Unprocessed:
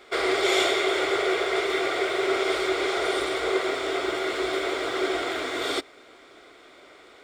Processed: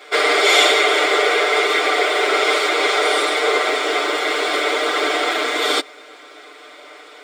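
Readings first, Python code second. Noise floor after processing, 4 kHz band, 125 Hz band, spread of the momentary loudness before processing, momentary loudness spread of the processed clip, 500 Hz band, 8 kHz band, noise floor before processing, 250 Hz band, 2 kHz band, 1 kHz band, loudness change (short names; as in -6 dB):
-42 dBFS, +10.5 dB, n/a, 6 LU, 6 LU, +6.0 dB, +10.5 dB, -51 dBFS, +1.5 dB, +10.5 dB, +10.0 dB, +9.0 dB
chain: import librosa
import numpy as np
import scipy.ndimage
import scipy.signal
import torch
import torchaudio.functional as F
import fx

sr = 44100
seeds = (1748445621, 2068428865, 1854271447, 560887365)

y = scipy.signal.sosfilt(scipy.signal.butter(2, 400.0, 'highpass', fs=sr, output='sos'), x)
y = y + 0.99 * np.pad(y, (int(6.7 * sr / 1000.0), 0))[:len(y)]
y = F.gain(torch.from_numpy(y), 7.5).numpy()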